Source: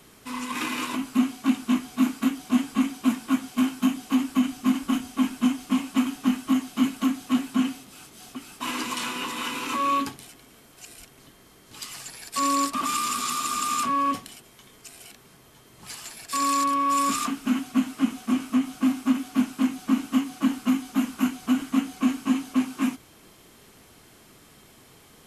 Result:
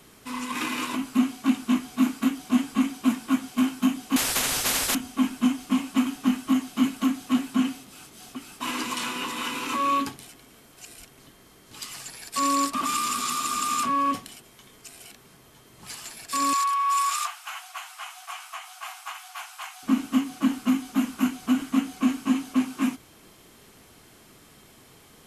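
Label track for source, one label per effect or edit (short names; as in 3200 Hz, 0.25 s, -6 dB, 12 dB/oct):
4.160000	4.950000	spectral compressor 10:1
16.530000	19.830000	brick-wall FIR high-pass 660 Hz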